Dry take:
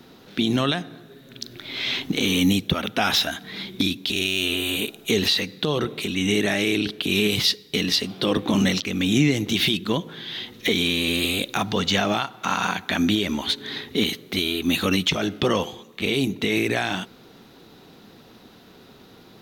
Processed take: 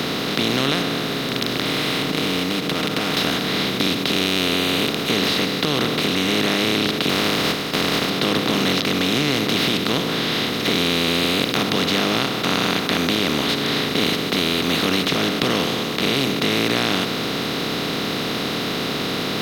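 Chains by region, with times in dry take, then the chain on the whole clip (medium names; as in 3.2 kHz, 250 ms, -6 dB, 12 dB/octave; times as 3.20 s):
1.65–3.17 s: median filter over 9 samples + compression 4:1, threshold -34 dBFS + comb 6.5 ms, depth 70%
7.09–8.08 s: spectral contrast reduction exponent 0.16 + low-pass 1.7 kHz 6 dB/octave
whole clip: spectral levelling over time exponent 0.2; hum notches 50/100 Hz; trim -7.5 dB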